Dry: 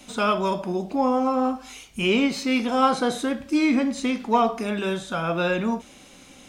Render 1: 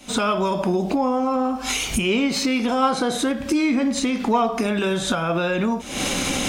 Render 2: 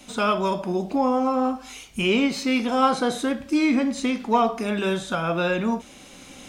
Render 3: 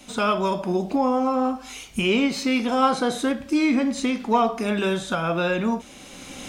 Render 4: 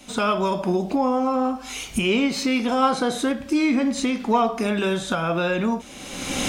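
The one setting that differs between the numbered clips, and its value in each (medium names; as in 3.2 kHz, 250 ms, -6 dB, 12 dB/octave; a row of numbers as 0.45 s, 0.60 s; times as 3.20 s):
recorder AGC, rising by: 88 dB/s, 5.5 dB/s, 14 dB/s, 34 dB/s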